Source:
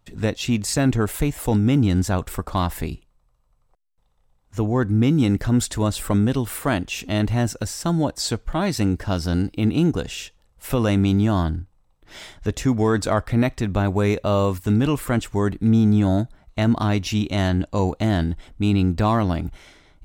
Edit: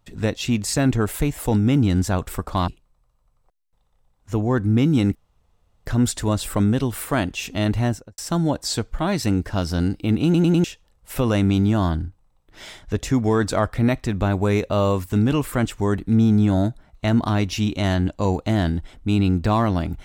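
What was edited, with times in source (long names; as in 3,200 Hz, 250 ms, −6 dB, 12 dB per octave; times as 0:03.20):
0:02.68–0:02.93: remove
0:05.40: splice in room tone 0.71 s
0:07.36–0:07.72: fade out and dull
0:09.78: stutter in place 0.10 s, 4 plays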